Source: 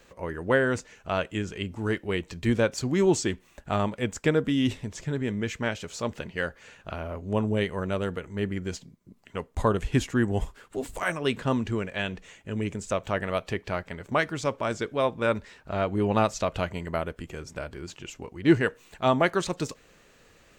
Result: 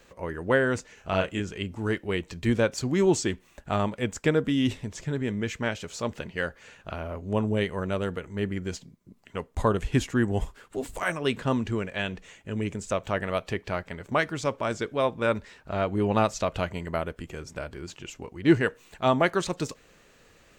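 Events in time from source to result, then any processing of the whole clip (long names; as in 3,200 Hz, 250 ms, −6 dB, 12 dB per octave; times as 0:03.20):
0:00.94–0:01.40: double-tracking delay 32 ms −3 dB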